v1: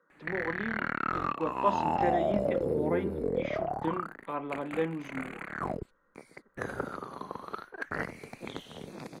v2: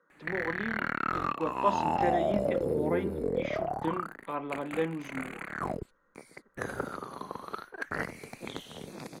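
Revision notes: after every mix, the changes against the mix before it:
master: add high shelf 4900 Hz +7 dB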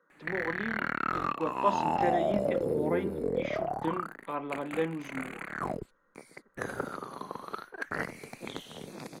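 master: add bell 68 Hz -7 dB 0.84 oct

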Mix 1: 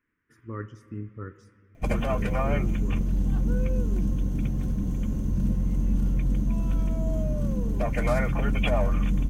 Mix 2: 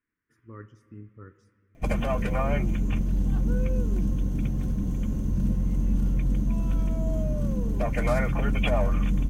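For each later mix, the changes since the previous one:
speech -8.0 dB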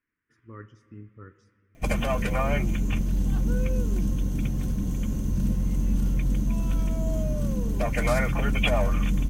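speech: add air absorption 90 m; master: add high shelf 2200 Hz +8.5 dB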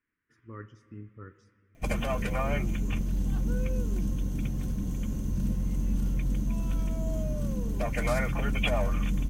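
background -4.0 dB

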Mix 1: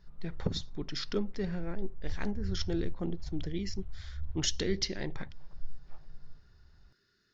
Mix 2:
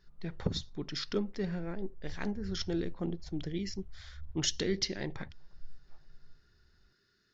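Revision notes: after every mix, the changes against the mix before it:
background -8.0 dB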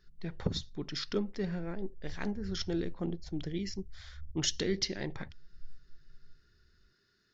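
background: add Gaussian blur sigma 25 samples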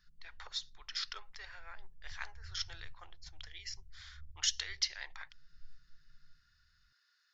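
speech: add HPF 990 Hz 24 dB/oct; background -6.5 dB

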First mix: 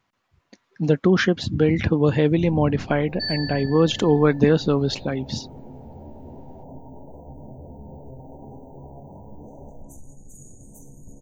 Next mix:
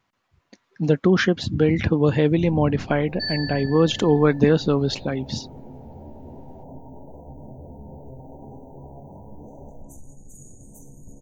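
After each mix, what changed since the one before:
second sound: add ripple EQ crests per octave 1.5, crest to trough 13 dB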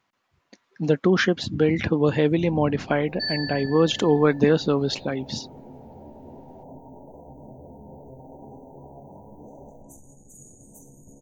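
master: add low shelf 110 Hz -12 dB

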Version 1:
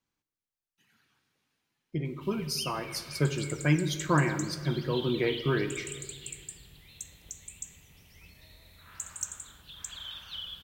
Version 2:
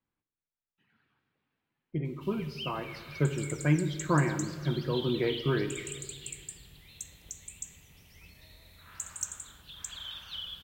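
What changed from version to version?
speech: add air absorption 370 m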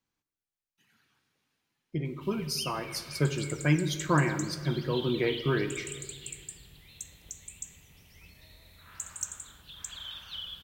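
speech: remove air absorption 370 m

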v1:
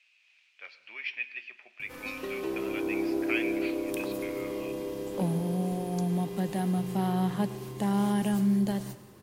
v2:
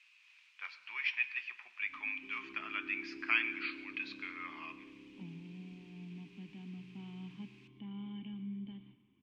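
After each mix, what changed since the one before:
background: add vocal tract filter i; master: add resonant low shelf 750 Hz -9.5 dB, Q 3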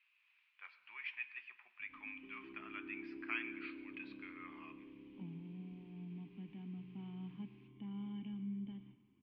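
speech -6.0 dB; master: add air absorption 330 m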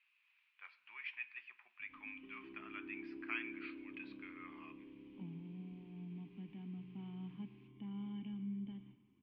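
speech: send -7.5 dB

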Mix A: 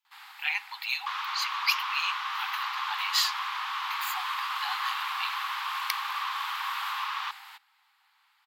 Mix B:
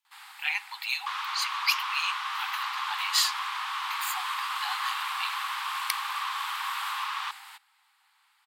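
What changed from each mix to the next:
master: add bell 8900 Hz +10.5 dB 0.55 oct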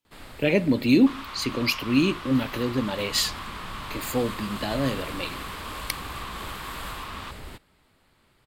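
second sound -6.0 dB; master: remove brick-wall FIR high-pass 750 Hz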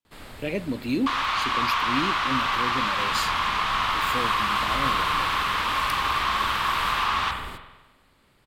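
speech -7.5 dB; second sound +10.5 dB; reverb: on, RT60 1.1 s

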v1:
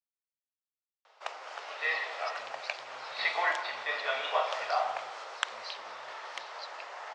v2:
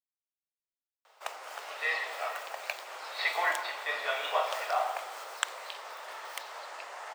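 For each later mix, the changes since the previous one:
speech: add double band-pass 1200 Hz, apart 2.9 oct; master: remove LPF 6000 Hz 24 dB/oct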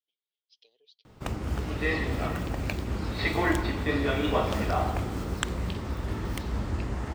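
speech: entry -1.75 s; background: remove steep high-pass 590 Hz 36 dB/oct

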